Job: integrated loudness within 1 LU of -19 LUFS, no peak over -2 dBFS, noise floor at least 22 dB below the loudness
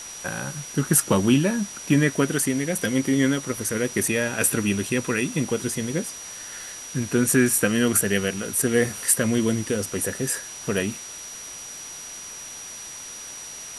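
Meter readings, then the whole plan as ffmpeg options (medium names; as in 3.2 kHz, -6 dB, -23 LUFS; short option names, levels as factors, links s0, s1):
steady tone 5.8 kHz; tone level -37 dBFS; noise floor -38 dBFS; noise floor target -45 dBFS; loudness -23.0 LUFS; peak level -4.0 dBFS; loudness target -19.0 LUFS
-> -af "bandreject=f=5800:w=30"
-af "afftdn=nr=7:nf=-38"
-af "volume=1.58,alimiter=limit=0.794:level=0:latency=1"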